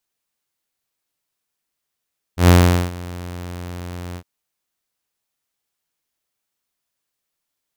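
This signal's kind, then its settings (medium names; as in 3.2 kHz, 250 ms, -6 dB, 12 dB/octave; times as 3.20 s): ADSR saw 88.4 Hz, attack 113 ms, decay 421 ms, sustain -22 dB, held 1.79 s, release 69 ms -4 dBFS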